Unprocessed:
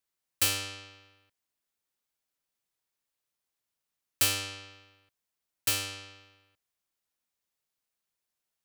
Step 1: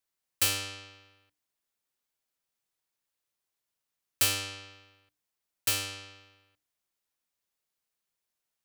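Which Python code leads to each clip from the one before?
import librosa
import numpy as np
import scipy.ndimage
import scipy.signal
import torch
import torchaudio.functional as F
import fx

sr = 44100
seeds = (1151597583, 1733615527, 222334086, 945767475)

y = fx.hum_notches(x, sr, base_hz=60, count=5)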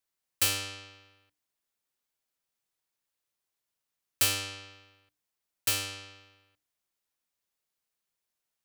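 y = x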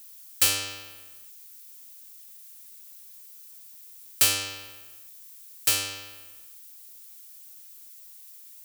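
y = fx.bass_treble(x, sr, bass_db=-4, treble_db=3)
y = fx.dmg_noise_colour(y, sr, seeds[0], colour='violet', level_db=-51.0)
y = y * 10.0 ** (3.0 / 20.0)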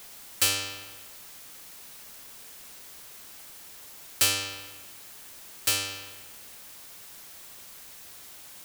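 y = fx.high_shelf(x, sr, hz=9200.0, db=-5.5)
y = fx.quant_dither(y, sr, seeds[1], bits=8, dither='triangular')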